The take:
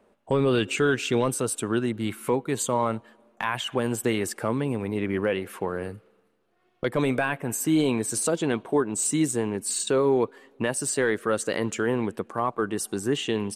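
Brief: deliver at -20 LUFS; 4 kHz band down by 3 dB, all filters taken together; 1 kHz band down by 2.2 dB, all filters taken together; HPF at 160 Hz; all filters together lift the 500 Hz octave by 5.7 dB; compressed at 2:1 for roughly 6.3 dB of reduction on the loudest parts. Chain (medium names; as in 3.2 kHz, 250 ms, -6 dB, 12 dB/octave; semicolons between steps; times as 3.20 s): high-pass 160 Hz; peaking EQ 500 Hz +8 dB; peaking EQ 1 kHz -5 dB; peaking EQ 4 kHz -4 dB; compression 2:1, threshold -26 dBFS; trim +8 dB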